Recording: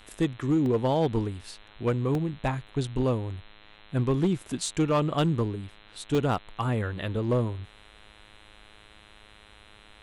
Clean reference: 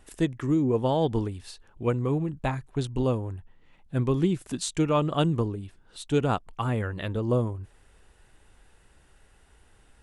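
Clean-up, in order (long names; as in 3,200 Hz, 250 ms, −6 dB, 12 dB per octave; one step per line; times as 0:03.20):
clipped peaks rebuilt −18 dBFS
hum removal 105.3 Hz, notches 39
repair the gap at 0:00.66/0:02.15/0:02.67/0:05.76/0:06.15, 1 ms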